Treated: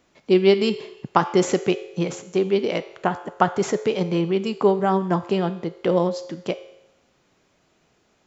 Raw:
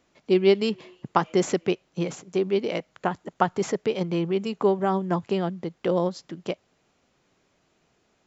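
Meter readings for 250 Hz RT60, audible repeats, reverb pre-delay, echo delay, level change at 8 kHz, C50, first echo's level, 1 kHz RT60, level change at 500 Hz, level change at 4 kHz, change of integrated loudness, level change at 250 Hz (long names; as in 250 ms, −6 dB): 0.85 s, no echo audible, 4 ms, no echo audible, can't be measured, 13.5 dB, no echo audible, 0.85 s, +3.5 dB, +4.0 dB, +3.5 dB, +3.5 dB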